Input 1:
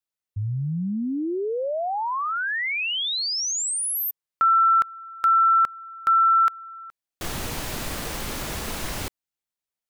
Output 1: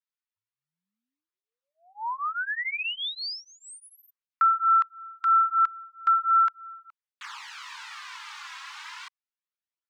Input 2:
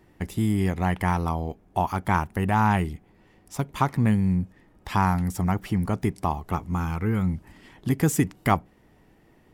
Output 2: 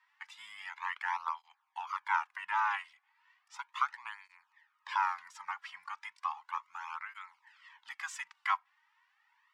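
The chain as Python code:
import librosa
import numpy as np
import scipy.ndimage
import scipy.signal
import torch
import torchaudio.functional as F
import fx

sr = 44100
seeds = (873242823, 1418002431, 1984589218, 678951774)

y = scipy.signal.sosfilt(scipy.signal.cheby2(8, 60, 620.0, 'highpass', fs=sr, output='sos'), x)
y = fx.air_absorb(y, sr, metres=140.0)
y = fx.flanger_cancel(y, sr, hz=0.35, depth_ms=3.5)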